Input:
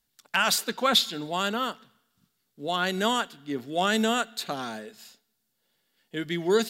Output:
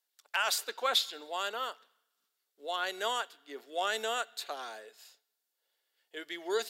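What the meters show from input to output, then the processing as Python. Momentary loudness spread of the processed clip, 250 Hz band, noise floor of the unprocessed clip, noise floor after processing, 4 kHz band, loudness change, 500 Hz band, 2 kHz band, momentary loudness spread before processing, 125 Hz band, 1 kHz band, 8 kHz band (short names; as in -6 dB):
17 LU, -20.5 dB, -76 dBFS, -84 dBFS, -6.5 dB, -7.0 dB, -8.5 dB, -6.5 dB, 14 LU, under -30 dB, -6.5 dB, -6.5 dB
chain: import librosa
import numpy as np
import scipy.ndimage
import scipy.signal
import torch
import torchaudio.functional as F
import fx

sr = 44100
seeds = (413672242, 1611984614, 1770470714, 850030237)

y = scipy.signal.sosfilt(scipy.signal.butter(4, 420.0, 'highpass', fs=sr, output='sos'), x)
y = F.gain(torch.from_numpy(y), -6.5).numpy()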